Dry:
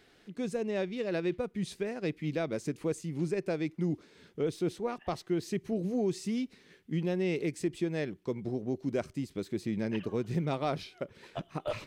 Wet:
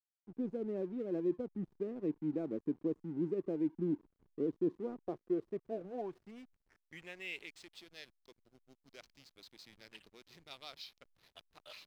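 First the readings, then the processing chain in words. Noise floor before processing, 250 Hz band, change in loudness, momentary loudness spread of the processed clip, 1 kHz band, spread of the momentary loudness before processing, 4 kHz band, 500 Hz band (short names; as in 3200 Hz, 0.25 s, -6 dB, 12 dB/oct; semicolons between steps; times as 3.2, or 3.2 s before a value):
-63 dBFS, -6.0 dB, -5.0 dB, 20 LU, -13.0 dB, 7 LU, -7.0 dB, -7.0 dB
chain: band-pass sweep 300 Hz -> 4300 Hz, 4.9–7.79; backlash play -53.5 dBFS; gain +1 dB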